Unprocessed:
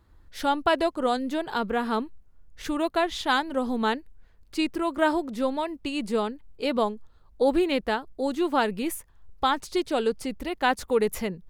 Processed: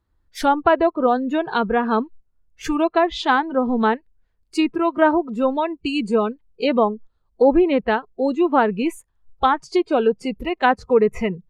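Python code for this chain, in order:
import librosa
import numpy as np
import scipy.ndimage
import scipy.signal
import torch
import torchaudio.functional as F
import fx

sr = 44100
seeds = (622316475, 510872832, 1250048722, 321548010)

y = fx.noise_reduce_blind(x, sr, reduce_db=19)
y = fx.env_lowpass_down(y, sr, base_hz=1600.0, full_db=-20.0)
y = y * 10.0 ** (7.5 / 20.0)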